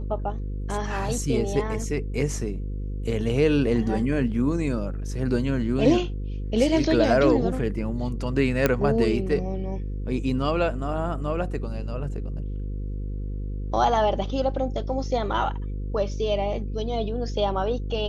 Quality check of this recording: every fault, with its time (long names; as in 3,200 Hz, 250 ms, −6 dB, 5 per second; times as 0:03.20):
mains buzz 50 Hz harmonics 10 −30 dBFS
0:08.66: click −6 dBFS